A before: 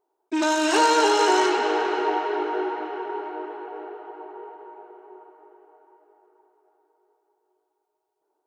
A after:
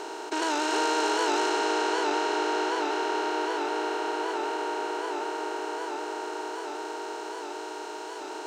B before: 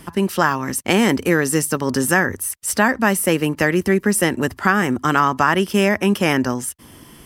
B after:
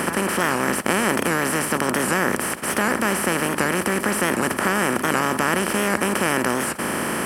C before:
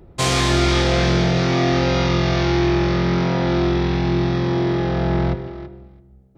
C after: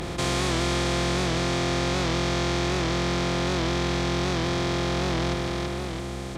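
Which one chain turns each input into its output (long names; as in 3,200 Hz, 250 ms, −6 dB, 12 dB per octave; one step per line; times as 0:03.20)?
compressor on every frequency bin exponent 0.2
wow of a warped record 78 rpm, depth 100 cents
level −12 dB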